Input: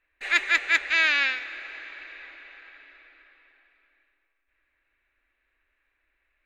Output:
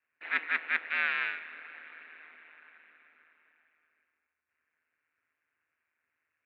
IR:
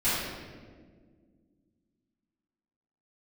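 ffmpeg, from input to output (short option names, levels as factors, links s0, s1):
-af "aeval=exprs='val(0)*sin(2*PI*79*n/s)':c=same,highpass=260,equalizer=f=270:t=q:w=4:g=7,equalizer=f=990:t=q:w=4:g=3,equalizer=f=1400:t=q:w=4:g=5,lowpass=f=2900:w=0.5412,lowpass=f=2900:w=1.3066,volume=0.501"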